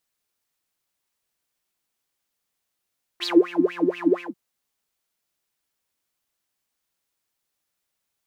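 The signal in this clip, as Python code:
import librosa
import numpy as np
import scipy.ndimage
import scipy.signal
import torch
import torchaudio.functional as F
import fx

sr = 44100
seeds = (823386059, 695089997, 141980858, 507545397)

y = fx.sub_patch_wobble(sr, seeds[0], note=65, wave='triangle', wave2='saw', interval_st=-12, level2_db=-9.0, sub_db=-15.0, noise_db=-16.0, kind='bandpass', cutoff_hz=560.0, q=12.0, env_oct=1.5, env_decay_s=0.26, env_sustain_pct=40, attack_ms=29.0, decay_s=0.17, sustain_db=-12.0, release_s=0.15, note_s=0.99, lfo_hz=4.2, wobble_oct=1.7)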